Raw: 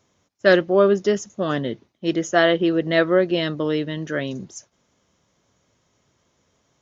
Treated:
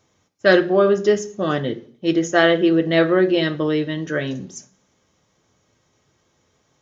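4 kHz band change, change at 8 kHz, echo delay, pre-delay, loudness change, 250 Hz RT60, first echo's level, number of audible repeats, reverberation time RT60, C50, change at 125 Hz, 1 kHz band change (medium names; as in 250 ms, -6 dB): +1.5 dB, no reading, no echo, 3 ms, +2.0 dB, 0.65 s, no echo, no echo, 0.45 s, 15.5 dB, +2.0 dB, +1.5 dB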